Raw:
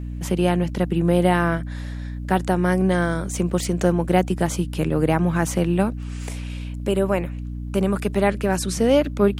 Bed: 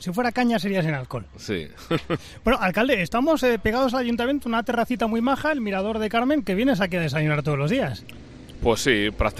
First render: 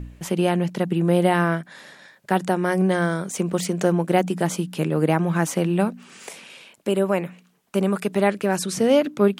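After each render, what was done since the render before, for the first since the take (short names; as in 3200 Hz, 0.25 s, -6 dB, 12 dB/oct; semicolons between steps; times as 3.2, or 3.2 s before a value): de-hum 60 Hz, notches 5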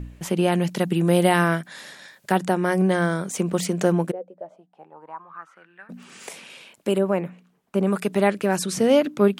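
0.52–2.32 high shelf 2800 Hz +8 dB; 4.1–5.89 band-pass 460 Hz -> 1800 Hz, Q 13; 6.98–7.87 high shelf 2000 Hz -10 dB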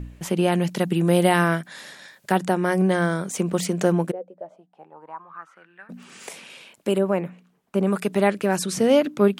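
nothing audible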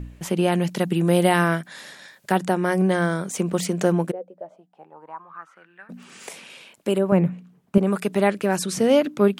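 7.12–7.78 bell 130 Hz +14 dB 2 oct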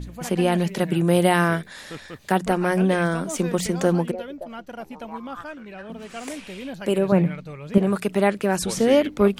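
add bed -14 dB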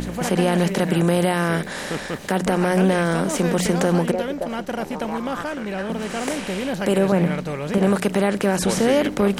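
per-bin compression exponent 0.6; limiter -8.5 dBFS, peak gain reduction 7 dB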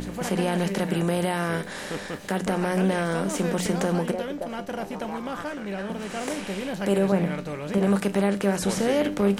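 resonator 99 Hz, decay 0.28 s, harmonics all, mix 60%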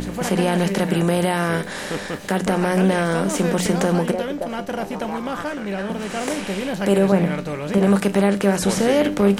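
gain +5.5 dB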